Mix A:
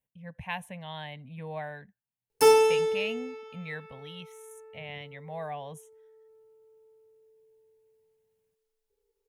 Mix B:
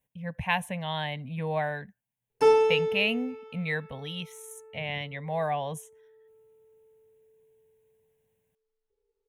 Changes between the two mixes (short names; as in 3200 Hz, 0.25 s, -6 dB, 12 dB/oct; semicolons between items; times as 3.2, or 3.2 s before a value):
speech +8.0 dB; background: add tape spacing loss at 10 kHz 20 dB